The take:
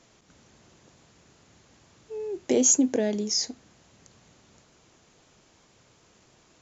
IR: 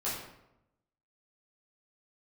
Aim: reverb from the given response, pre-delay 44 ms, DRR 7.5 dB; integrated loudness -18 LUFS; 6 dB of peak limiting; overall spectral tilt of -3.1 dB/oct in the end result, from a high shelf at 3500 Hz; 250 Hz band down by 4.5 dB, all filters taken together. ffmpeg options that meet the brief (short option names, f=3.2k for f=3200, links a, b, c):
-filter_complex "[0:a]equalizer=f=250:t=o:g=-5,highshelf=f=3.5k:g=-8.5,alimiter=limit=-20.5dB:level=0:latency=1,asplit=2[a][b];[1:a]atrim=start_sample=2205,adelay=44[c];[b][c]afir=irnorm=-1:irlink=0,volume=-13dB[d];[a][d]amix=inputs=2:normalize=0,volume=12.5dB"